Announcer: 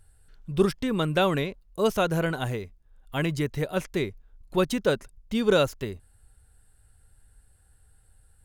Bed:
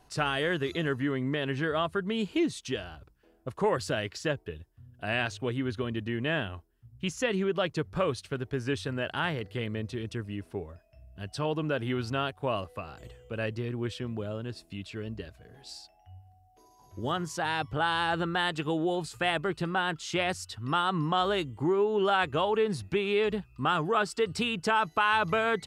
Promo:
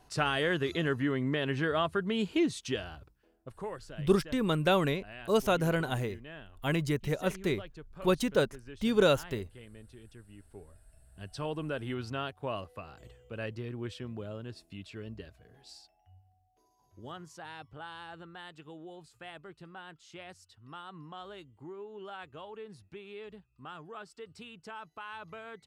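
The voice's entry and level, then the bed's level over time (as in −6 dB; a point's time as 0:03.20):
3.50 s, −3.0 dB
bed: 0:02.98 −0.5 dB
0:03.95 −17.5 dB
0:10.28 −17.5 dB
0:11.24 −5.5 dB
0:15.36 −5.5 dB
0:18.23 −18.5 dB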